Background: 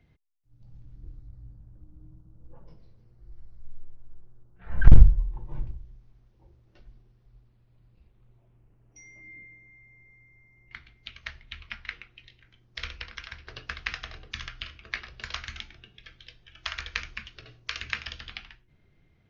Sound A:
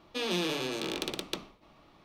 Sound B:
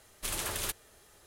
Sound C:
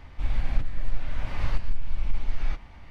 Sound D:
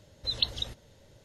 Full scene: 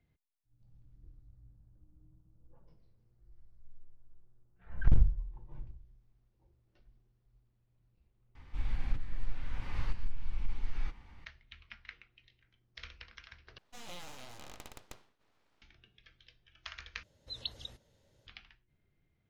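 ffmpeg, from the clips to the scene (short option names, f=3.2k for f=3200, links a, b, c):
-filter_complex "[0:a]volume=-12dB[a];[3:a]equalizer=f=630:t=o:w=0.23:g=-12.5[b];[1:a]aeval=exprs='abs(val(0))':c=same[c];[a]asplit=4[d][e][f][g];[d]atrim=end=8.354[h];[b]atrim=end=2.9,asetpts=PTS-STARTPTS,volume=-8dB[i];[e]atrim=start=11.246:end=13.584[j];[c]atrim=end=2.04,asetpts=PTS-STARTPTS,volume=-13.5dB[k];[f]atrim=start=15.616:end=17.034[l];[4:a]atrim=end=1.24,asetpts=PTS-STARTPTS,volume=-12dB[m];[g]atrim=start=18.266[n];[h][i]acrossfade=d=0.004:c1=hsin:c2=hsin[o];[o][j]acrossfade=d=0.004:c1=hsin:c2=hsin[p];[p][k]acrossfade=d=0.004:c1=hsin:c2=hsin[q];[q][l]acrossfade=d=0.004:c1=hsin:c2=hsin[r];[r][m]acrossfade=d=0.004:c1=hsin:c2=hsin[s];[s][n]acrossfade=d=0.004:c1=hsin:c2=hsin"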